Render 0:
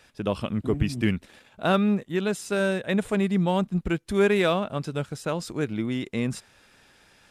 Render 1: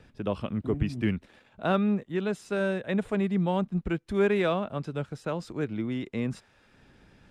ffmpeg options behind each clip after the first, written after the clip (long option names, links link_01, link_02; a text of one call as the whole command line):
ffmpeg -i in.wav -filter_complex "[0:a]lowpass=frequency=2500:poles=1,acrossover=split=340|940|1800[link_01][link_02][link_03][link_04];[link_01]acompressor=mode=upward:threshold=-43dB:ratio=2.5[link_05];[link_05][link_02][link_03][link_04]amix=inputs=4:normalize=0,volume=-3dB" out.wav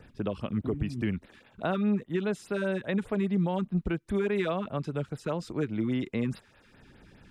ffmpeg -i in.wav -af "alimiter=limit=-22dB:level=0:latency=1:release=244,afftfilt=real='re*(1-between(b*sr/1024,550*pow(7700/550,0.5+0.5*sin(2*PI*4.9*pts/sr))/1.41,550*pow(7700/550,0.5+0.5*sin(2*PI*4.9*pts/sr))*1.41))':imag='im*(1-between(b*sr/1024,550*pow(7700/550,0.5+0.5*sin(2*PI*4.9*pts/sr))/1.41,550*pow(7700/550,0.5+0.5*sin(2*PI*4.9*pts/sr))*1.41))':win_size=1024:overlap=0.75,volume=2.5dB" out.wav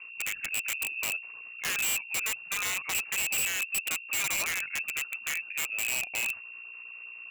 ffmpeg -i in.wav -af "aeval=exprs='val(0)+0.00794*(sin(2*PI*60*n/s)+sin(2*PI*2*60*n/s)/2+sin(2*PI*3*60*n/s)/3+sin(2*PI*4*60*n/s)/4+sin(2*PI*5*60*n/s)/5)':channel_layout=same,lowpass=frequency=2400:width_type=q:width=0.5098,lowpass=frequency=2400:width_type=q:width=0.6013,lowpass=frequency=2400:width_type=q:width=0.9,lowpass=frequency=2400:width_type=q:width=2.563,afreqshift=-2800,aeval=exprs='(mod(14.1*val(0)+1,2)-1)/14.1':channel_layout=same,volume=-1.5dB" out.wav